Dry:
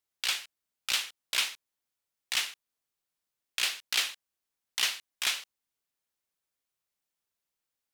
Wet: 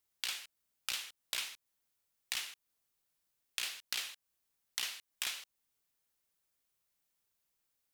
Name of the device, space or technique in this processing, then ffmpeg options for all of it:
ASMR close-microphone chain: -af "lowshelf=f=150:g=5,acompressor=threshold=0.0126:ratio=6,highshelf=f=9100:g=5.5,volume=1.19"

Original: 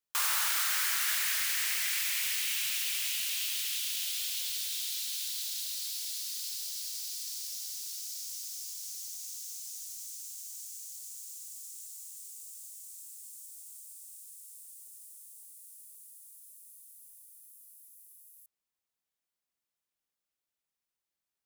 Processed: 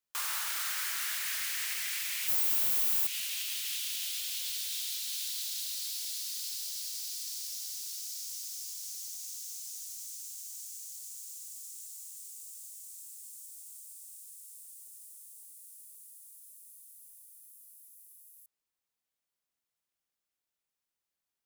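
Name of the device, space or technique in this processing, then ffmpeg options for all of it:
soft clipper into limiter: -filter_complex "[0:a]asettb=1/sr,asplit=3[s0][s1][s2];[s0]atrim=end=2.284[s3];[s1]atrim=start=2.28:end=3.07,asetpts=PTS-STARTPTS,afade=t=in:d=0.004:c=qsin,afade=t=out:st=0.786:d=0.004:c=qsin,aemphasis=mode=production:type=bsi[s4];[s2]atrim=start=3.066[s5];[s3][s4]acrossfade=d=0.004:c1=hsin:c2=qsin[s6];[s6][s5]acrossfade=d=0.004:c1=qsin:c2=hsin,asoftclip=type=tanh:threshold=0.1,alimiter=level_in=1.26:limit=0.0631:level=0:latency=1:release=155,volume=0.794"

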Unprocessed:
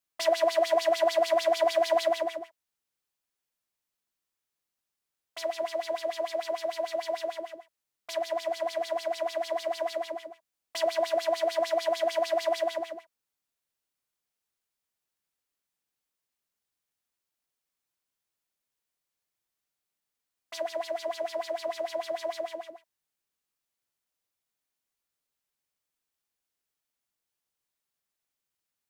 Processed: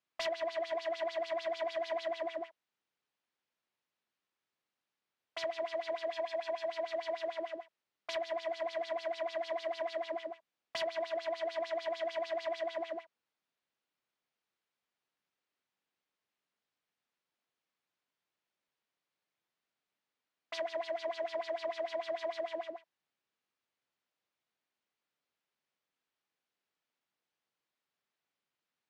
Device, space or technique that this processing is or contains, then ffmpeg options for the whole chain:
AM radio: -filter_complex "[0:a]asettb=1/sr,asplit=3[s0][s1][s2];[s0]atrim=end=6.124[s3];[s1]atrim=start=6.12:end=6.69,asetpts=PTS-STARTPTS,afade=t=in:d=0.004:c=qsin,afade=t=out:st=0.566:d=0.004:c=qsin,aecho=1:1:1.2:0.41,atrim=end_sample=25137[s4];[s2]atrim=start=6.686[s5];[s3][s4]acrossfade=d=0.004:c1=hsin:c2=qsin[s6];[s6][s5]acrossfade=d=0.004:c1=qsin:c2=hsin,highpass=140,lowpass=3600,acompressor=threshold=0.02:ratio=5,asoftclip=type=tanh:threshold=0.0299,volume=1.33"

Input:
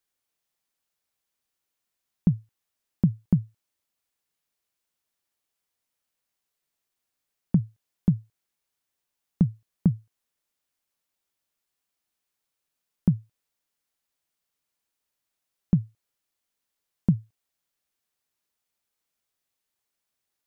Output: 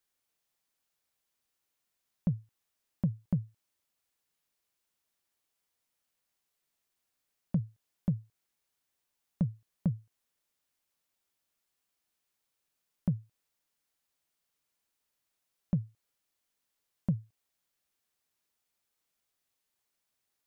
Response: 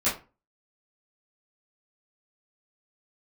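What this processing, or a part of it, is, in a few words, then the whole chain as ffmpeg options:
soft clipper into limiter: -af "asoftclip=type=tanh:threshold=0.266,alimiter=limit=0.0944:level=0:latency=1:release=272"

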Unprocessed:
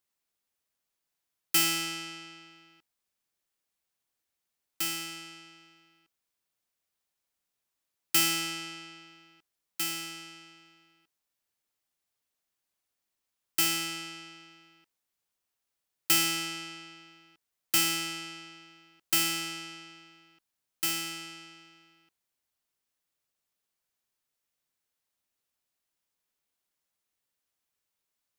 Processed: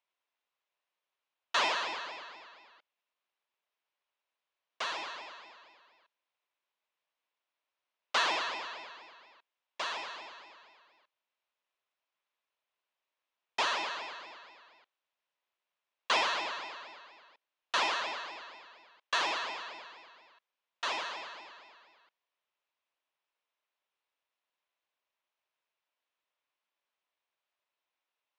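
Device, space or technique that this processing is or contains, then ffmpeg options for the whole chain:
voice changer toy: -af "aeval=exprs='val(0)*sin(2*PI*1800*n/s+1800*0.3/4.2*sin(2*PI*4.2*n/s))':c=same,highpass=450,equalizer=f=600:t=q:w=4:g=4,equalizer=f=1000:t=q:w=4:g=6,equalizer=f=2600:t=q:w=4:g=3,equalizer=f=4600:t=q:w=4:g=-6,lowpass=f=4600:w=0.5412,lowpass=f=4600:w=1.3066,volume=1.41"

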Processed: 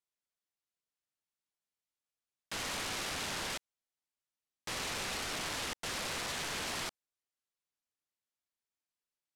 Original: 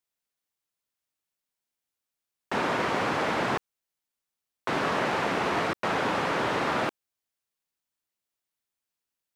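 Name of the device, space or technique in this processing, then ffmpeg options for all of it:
overflowing digital effects unit: -af "aeval=exprs='(mod(18.8*val(0)+1,2)-1)/18.8':c=same,lowpass=10000,volume=0.447"

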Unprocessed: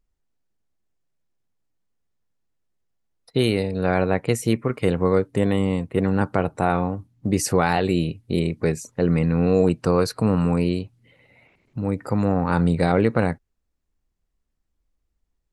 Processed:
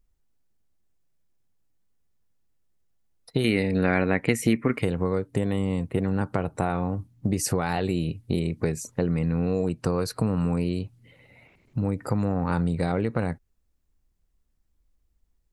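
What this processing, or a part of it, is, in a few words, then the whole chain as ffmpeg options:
ASMR close-microphone chain: -filter_complex "[0:a]lowshelf=f=180:g=5.5,acompressor=threshold=0.0891:ratio=6,highshelf=f=7800:g=6,asettb=1/sr,asplit=3[s0][s1][s2];[s0]atrim=end=3.444[s3];[s1]atrim=start=3.44:end=4.82,asetpts=PTS-STARTPTS,afade=t=in:d=0.004:c=qsin,afade=t=out:st=1.376:d=0.004:c=qsin,equalizer=f=125:t=o:w=1:g=-3,equalizer=f=250:t=o:w=1:g=8,equalizer=f=2000:t=o:w=1:g=12[s4];[s2]atrim=start=4.816[s5];[s3][s4]acrossfade=d=0.004:c1=hsin:c2=qsin[s6];[s6][s5]acrossfade=d=0.004:c1=qsin:c2=hsin"

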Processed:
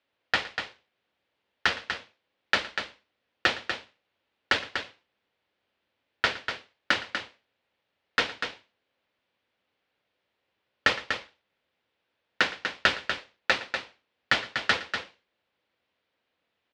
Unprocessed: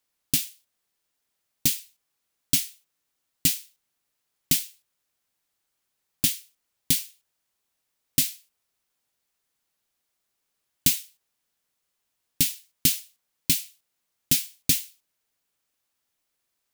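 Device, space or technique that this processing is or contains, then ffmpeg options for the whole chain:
ring modulator pedal into a guitar cabinet: -af "aeval=exprs='val(0)*sgn(sin(2*PI*1600*n/s))':c=same,highpass=92,equalizer=f=150:t=q:w=4:g=-8,equalizer=f=520:t=q:w=4:g=6,equalizer=f=1200:t=q:w=4:g=-3,lowpass=f=3500:w=0.5412,lowpass=f=3500:w=1.3066,lowshelf=f=150:g=4.5,aecho=1:1:114|243:0.119|0.422,volume=2"

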